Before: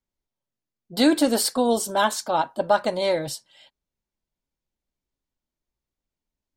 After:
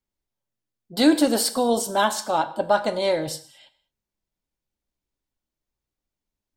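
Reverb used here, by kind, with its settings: non-linear reverb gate 0.25 s falling, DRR 11.5 dB

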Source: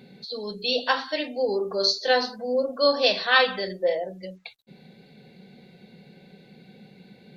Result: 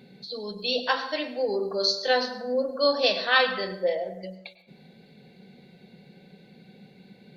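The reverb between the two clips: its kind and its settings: plate-style reverb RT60 0.84 s, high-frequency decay 0.5×, pre-delay 85 ms, DRR 12 dB; gain -2 dB

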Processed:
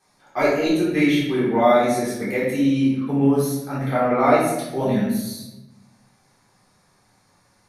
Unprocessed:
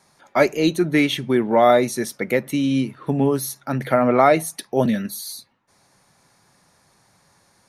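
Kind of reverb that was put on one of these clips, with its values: shoebox room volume 400 m³, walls mixed, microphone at 3.7 m; gain -11 dB

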